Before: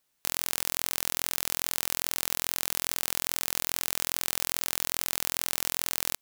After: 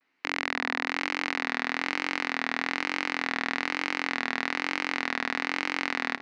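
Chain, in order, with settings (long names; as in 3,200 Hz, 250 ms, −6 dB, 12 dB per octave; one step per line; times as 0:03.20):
loudspeaker in its box 260–3,500 Hz, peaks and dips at 270 Hz +10 dB, 550 Hz −9 dB, 2,000 Hz +7 dB, 3,300 Hz −10 dB
delay that swaps between a low-pass and a high-pass 310 ms, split 1,100 Hz, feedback 52%, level −9.5 dB
pitch vibrato 1.1 Hz 92 cents
level +8 dB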